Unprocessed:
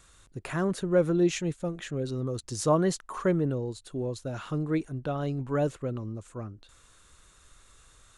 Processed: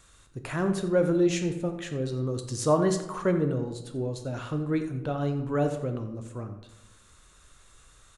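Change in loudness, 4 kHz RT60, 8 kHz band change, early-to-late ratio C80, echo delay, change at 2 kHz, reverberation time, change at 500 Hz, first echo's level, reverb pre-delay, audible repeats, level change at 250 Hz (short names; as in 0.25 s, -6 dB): +1.0 dB, 0.55 s, +0.5 dB, 10.5 dB, 87 ms, +1.0 dB, 0.95 s, +1.5 dB, -15.5 dB, 8 ms, 1, +1.5 dB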